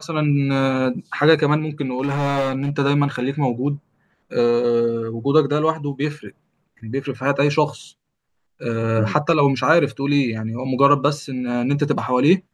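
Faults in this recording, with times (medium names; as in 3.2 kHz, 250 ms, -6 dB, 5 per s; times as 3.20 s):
1.98–2.70 s: clipped -17 dBFS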